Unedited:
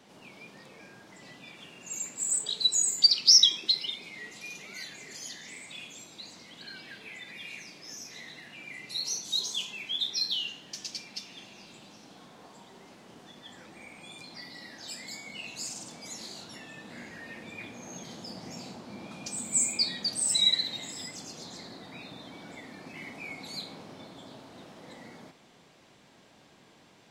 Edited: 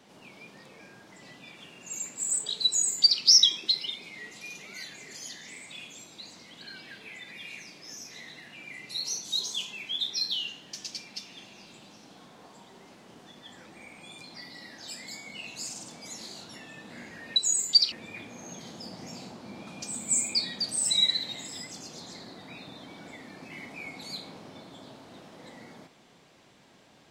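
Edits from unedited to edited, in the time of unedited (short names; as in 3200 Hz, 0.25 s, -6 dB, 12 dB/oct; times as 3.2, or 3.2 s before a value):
2.65–3.21 copy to 17.36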